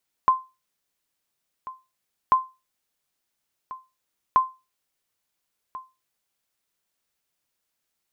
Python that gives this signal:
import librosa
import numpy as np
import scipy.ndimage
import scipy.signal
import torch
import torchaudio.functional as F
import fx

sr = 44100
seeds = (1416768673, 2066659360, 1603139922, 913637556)

y = fx.sonar_ping(sr, hz=1040.0, decay_s=0.26, every_s=2.04, pings=3, echo_s=1.39, echo_db=-18.5, level_db=-9.5)